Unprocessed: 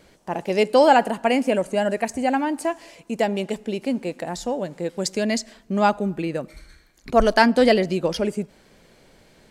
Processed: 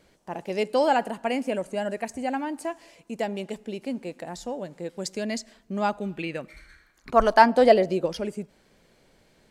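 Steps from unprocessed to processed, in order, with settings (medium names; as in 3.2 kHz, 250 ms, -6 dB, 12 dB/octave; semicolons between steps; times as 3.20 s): 6.00–8.04 s: peaking EQ 3.4 kHz -> 490 Hz +10.5 dB 1.3 oct; trim -7 dB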